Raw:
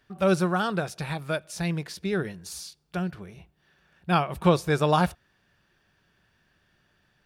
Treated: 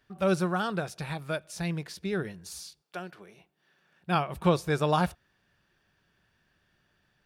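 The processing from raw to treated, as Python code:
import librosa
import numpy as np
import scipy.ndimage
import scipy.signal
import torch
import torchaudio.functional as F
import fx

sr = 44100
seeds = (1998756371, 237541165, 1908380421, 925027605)

y = fx.highpass(x, sr, hz=fx.line((2.81, 450.0), (4.15, 130.0)), slope=12, at=(2.81, 4.15), fade=0.02)
y = F.gain(torch.from_numpy(y), -3.5).numpy()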